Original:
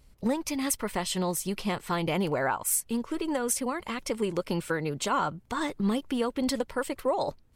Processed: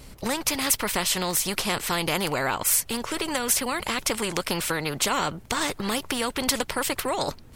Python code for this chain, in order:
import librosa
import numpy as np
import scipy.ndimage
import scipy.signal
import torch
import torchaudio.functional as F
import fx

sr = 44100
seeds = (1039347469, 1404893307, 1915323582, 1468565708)

y = fx.spectral_comp(x, sr, ratio=2.0)
y = y * 10.0 ** (7.5 / 20.0)